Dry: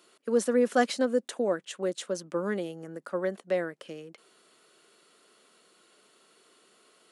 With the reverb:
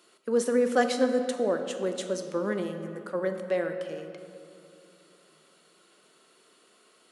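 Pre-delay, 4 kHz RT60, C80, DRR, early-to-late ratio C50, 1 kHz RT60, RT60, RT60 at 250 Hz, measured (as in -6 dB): 14 ms, 1.4 s, 8.0 dB, 6.0 dB, 7.5 dB, 2.4 s, 2.6 s, 3.4 s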